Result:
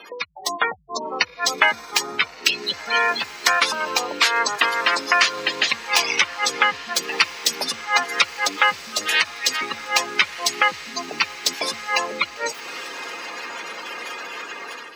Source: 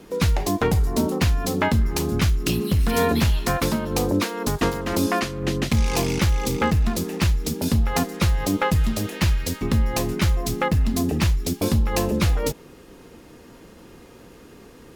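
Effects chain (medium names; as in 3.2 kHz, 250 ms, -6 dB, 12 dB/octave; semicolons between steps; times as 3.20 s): tracing distortion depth 0.11 ms; in parallel at -6 dB: overload inside the chain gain 22.5 dB; on the sum: treble shelf 2.7 kHz +4.5 dB; compression 12:1, threshold -28 dBFS, peak gain reduction 15 dB; added noise violet -56 dBFS; spectral gate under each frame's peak -20 dB strong; high-pass 1.4 kHz 12 dB/octave; on a send: echo that smears into a reverb 1378 ms, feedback 53%, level -15 dB; on the sum: level rider gain up to 9 dB; treble shelf 7.6 kHz -10 dB; loudness maximiser +14.5 dB; trim -1 dB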